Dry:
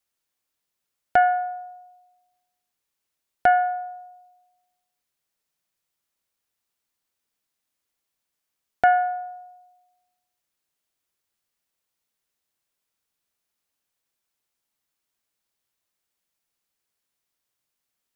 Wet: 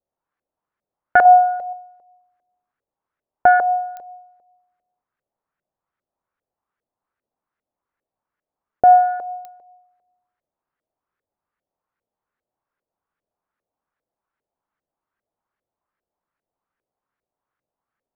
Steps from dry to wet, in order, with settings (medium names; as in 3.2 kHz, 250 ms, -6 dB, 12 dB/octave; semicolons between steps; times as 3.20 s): LFO low-pass saw up 2.5 Hz 510–1700 Hz; 1.25–1.73 s: comb 1.5 ms, depth 87%; clicks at 3.97/9.45 s, -25 dBFS; trim +2 dB